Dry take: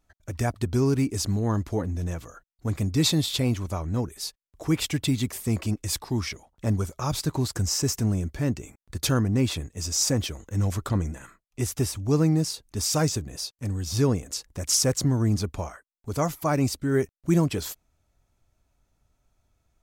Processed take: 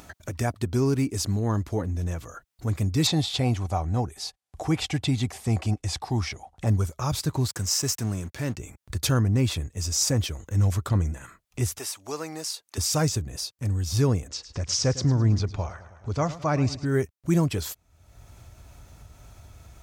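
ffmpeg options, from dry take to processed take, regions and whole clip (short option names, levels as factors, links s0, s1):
-filter_complex "[0:a]asettb=1/sr,asplit=3[s0][s1][s2];[s0]atrim=end=3.074[s3];[s1]atrim=start=3.07:end=6.67,asetpts=PTS-STARTPTS,afade=t=in:d=0.004:c=qsin,afade=t=out:st=3.596:d=0.004:c=qsin,lowpass=f=12000:w=0.5412,lowpass=f=12000:w=1.3066,equalizer=f=760:w=5.3:g=13,acrossover=split=6800[s4][s5];[s5]acompressor=threshold=0.00398:ratio=4:attack=1:release=60[s6];[s4][s6]amix=inputs=2:normalize=0[s7];[s2]atrim=start=6.666[s8];[s3][s7]acrossfade=d=0.004:c1=hsin:c2=qsin[s9];[s9][s8]acrossfade=d=0.004:c1=qsin:c2=hsin,asettb=1/sr,asplit=3[s10][s11][s12];[s10]atrim=end=7.484[s13];[s11]atrim=start=7.48:end=8.57,asetpts=PTS-STARTPTS,afade=t=in:d=0.004:c=qsin,afade=t=out:st=1.086:d=0.004:c=qsin,aeval=exprs='sgn(val(0))*max(abs(val(0))-0.00596,0)':c=same,highpass=110,tiltshelf=f=760:g=-3[s14];[s12]atrim=start=8.566[s15];[s13][s14]acrossfade=d=0.004:c1=hsin:c2=qsin[s16];[s16][s15]acrossfade=d=0.004:c1=qsin:c2=hsin,asettb=1/sr,asplit=3[s17][s18][s19];[s17]atrim=end=11.784[s20];[s18]atrim=start=11.78:end=12.78,asetpts=PTS-STARTPTS,afade=t=in:d=0.004:c=qsin,afade=t=out:st=0.996:d=0.004:c=qsin,highpass=660,deesser=0.45[s21];[s19]atrim=start=12.776[s22];[s20][s21]acrossfade=d=0.004:c1=hsin:c2=qsin[s23];[s23][s22]acrossfade=d=0.004:c1=qsin:c2=hsin,asettb=1/sr,asplit=3[s24][s25][s26];[s24]atrim=end=14.284[s27];[s25]atrim=start=14.28:end=16.86,asetpts=PTS-STARTPTS,afade=t=in:d=0.004:c=qsin,afade=t=out:st=2.576:d=0.004:c=qsin,lowpass=f=5900:w=0.5412,lowpass=f=5900:w=1.3066,aecho=1:1:106|212|318|424:0.168|0.0705|0.0296|0.0124,atrim=end_sample=113778[s28];[s26]atrim=start=16.856[s29];[s27][s28]acrossfade=d=0.004:c1=hsin:c2=qsin[s30];[s30][s29]acrossfade=d=0.004:c1=qsin:c2=hsin,highpass=81,asubboost=boost=3:cutoff=110,acompressor=mode=upward:threshold=0.0355:ratio=2.5"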